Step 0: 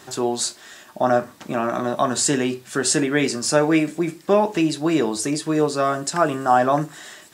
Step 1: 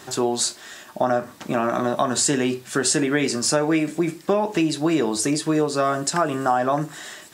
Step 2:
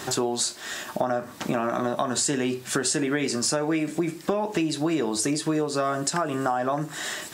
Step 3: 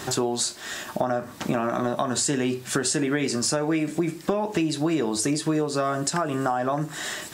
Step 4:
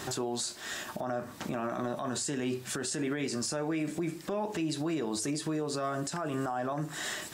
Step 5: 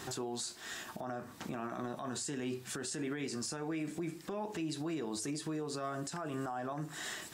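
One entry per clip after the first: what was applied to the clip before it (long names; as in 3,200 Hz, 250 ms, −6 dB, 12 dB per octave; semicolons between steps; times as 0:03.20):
downward compressor 5 to 1, threshold −19 dBFS, peak gain reduction 8 dB; level +2.5 dB
downward compressor 3 to 1, threshold −33 dBFS, peak gain reduction 13.5 dB; level +7 dB
low-shelf EQ 130 Hz +6.5 dB
brickwall limiter −20 dBFS, peak gain reduction 9.5 dB; level −4.5 dB
notch filter 590 Hz, Q 12; level −5.5 dB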